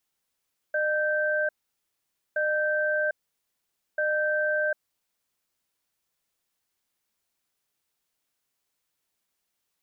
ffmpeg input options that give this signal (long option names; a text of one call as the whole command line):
ffmpeg -f lavfi -i "aevalsrc='0.0531*(sin(2*PI*607*t)+sin(2*PI*1560*t))*clip(min(mod(t,1.62),0.75-mod(t,1.62))/0.005,0,1)':duration=4.71:sample_rate=44100" out.wav